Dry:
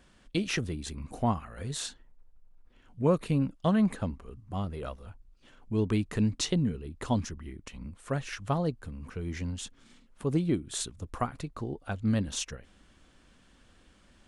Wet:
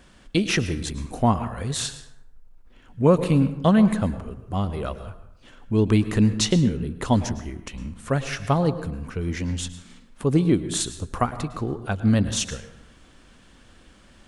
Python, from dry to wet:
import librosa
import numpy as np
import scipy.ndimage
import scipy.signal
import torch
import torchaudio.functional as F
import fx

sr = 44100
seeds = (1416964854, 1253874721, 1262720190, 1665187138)

y = fx.rev_plate(x, sr, seeds[0], rt60_s=0.79, hf_ratio=0.55, predelay_ms=95, drr_db=12.0)
y = y * librosa.db_to_amplitude(8.0)